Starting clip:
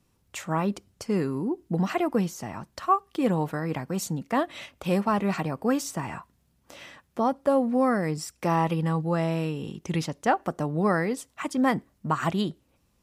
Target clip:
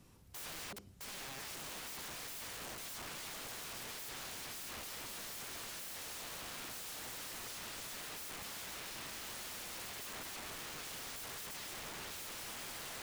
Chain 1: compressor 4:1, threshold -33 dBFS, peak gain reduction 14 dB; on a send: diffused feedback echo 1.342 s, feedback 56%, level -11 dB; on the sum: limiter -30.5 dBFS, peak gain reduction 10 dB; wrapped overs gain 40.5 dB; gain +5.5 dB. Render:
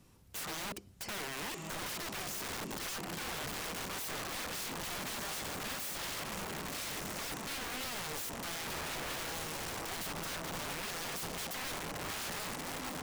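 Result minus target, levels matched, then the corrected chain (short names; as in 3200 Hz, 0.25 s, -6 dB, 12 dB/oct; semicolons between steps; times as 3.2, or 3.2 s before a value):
wrapped overs: distortion -25 dB
compressor 4:1, threshold -33 dBFS, peak gain reduction 14 dB; on a send: diffused feedback echo 1.342 s, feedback 56%, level -11 dB; on the sum: limiter -30.5 dBFS, peak gain reduction 10 dB; wrapped overs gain 47 dB; gain +5.5 dB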